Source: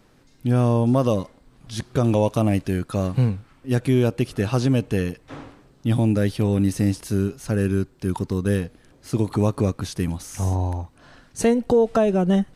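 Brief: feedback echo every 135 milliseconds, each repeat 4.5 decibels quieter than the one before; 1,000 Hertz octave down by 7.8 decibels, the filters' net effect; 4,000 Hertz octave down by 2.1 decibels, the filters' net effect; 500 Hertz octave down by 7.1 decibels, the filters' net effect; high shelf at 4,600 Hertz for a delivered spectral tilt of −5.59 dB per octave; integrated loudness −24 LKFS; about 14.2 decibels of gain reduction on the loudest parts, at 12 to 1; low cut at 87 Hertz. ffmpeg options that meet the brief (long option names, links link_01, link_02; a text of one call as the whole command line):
ffmpeg -i in.wav -af "highpass=87,equalizer=frequency=500:width_type=o:gain=-7,equalizer=frequency=1000:width_type=o:gain=-8,equalizer=frequency=4000:width_type=o:gain=-6,highshelf=frequency=4600:gain=7,acompressor=threshold=-31dB:ratio=12,aecho=1:1:135|270|405|540|675|810|945|1080|1215:0.596|0.357|0.214|0.129|0.0772|0.0463|0.0278|0.0167|0.01,volume=11dB" out.wav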